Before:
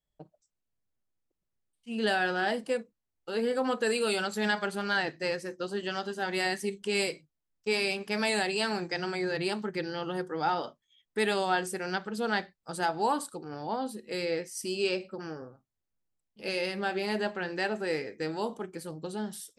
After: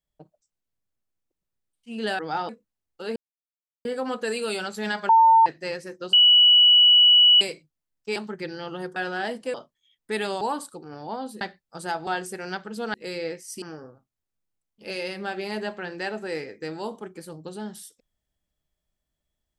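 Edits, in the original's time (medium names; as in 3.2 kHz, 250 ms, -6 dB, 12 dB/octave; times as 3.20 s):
2.19–2.77 s: swap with 10.31–10.61 s
3.44 s: insert silence 0.69 s
4.68–5.05 s: bleep 902 Hz -11.5 dBFS
5.72–7.00 s: bleep 2.94 kHz -11.5 dBFS
7.75–9.51 s: delete
11.48–12.35 s: swap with 13.01–14.01 s
14.69–15.20 s: delete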